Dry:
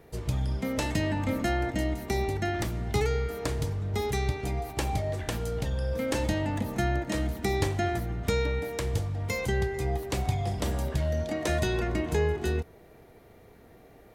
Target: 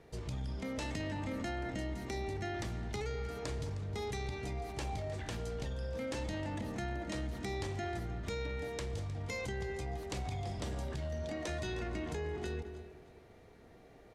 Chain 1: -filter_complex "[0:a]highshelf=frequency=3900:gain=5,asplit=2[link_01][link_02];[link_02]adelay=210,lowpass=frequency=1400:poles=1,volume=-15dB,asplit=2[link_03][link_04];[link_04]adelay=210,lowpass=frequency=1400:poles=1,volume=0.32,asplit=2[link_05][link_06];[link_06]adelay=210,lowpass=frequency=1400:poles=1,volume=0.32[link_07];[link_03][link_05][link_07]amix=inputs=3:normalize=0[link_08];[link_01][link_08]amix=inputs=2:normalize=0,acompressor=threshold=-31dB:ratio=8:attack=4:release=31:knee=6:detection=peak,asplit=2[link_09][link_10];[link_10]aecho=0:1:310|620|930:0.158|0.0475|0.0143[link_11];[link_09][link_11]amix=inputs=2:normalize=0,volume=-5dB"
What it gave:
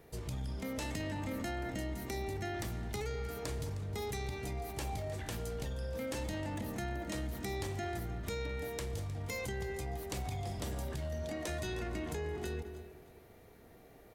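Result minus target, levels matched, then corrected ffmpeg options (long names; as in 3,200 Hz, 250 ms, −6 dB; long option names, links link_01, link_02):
8,000 Hz band +3.5 dB
-filter_complex "[0:a]lowpass=6800,highshelf=frequency=3900:gain=5,asplit=2[link_01][link_02];[link_02]adelay=210,lowpass=frequency=1400:poles=1,volume=-15dB,asplit=2[link_03][link_04];[link_04]adelay=210,lowpass=frequency=1400:poles=1,volume=0.32,asplit=2[link_05][link_06];[link_06]adelay=210,lowpass=frequency=1400:poles=1,volume=0.32[link_07];[link_03][link_05][link_07]amix=inputs=3:normalize=0[link_08];[link_01][link_08]amix=inputs=2:normalize=0,acompressor=threshold=-31dB:ratio=8:attack=4:release=31:knee=6:detection=peak,asplit=2[link_09][link_10];[link_10]aecho=0:1:310|620|930:0.158|0.0475|0.0143[link_11];[link_09][link_11]amix=inputs=2:normalize=0,volume=-5dB"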